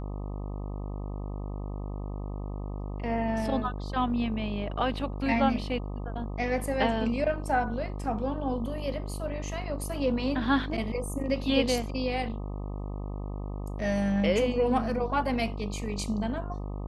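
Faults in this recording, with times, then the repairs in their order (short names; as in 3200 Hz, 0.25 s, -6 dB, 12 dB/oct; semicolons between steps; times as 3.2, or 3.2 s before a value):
buzz 50 Hz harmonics 25 -35 dBFS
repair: de-hum 50 Hz, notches 25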